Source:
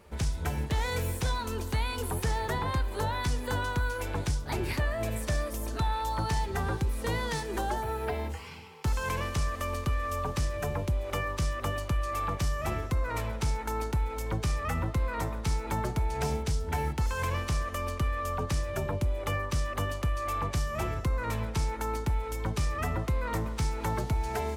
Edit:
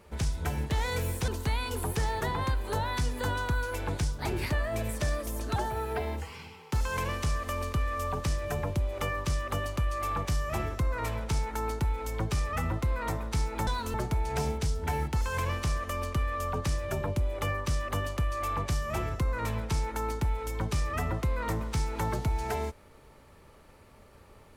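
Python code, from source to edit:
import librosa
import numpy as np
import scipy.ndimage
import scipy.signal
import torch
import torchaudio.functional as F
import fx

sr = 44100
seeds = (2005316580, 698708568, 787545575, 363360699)

y = fx.edit(x, sr, fx.move(start_s=1.28, length_s=0.27, to_s=15.79),
    fx.cut(start_s=5.83, length_s=1.85), tone=tone)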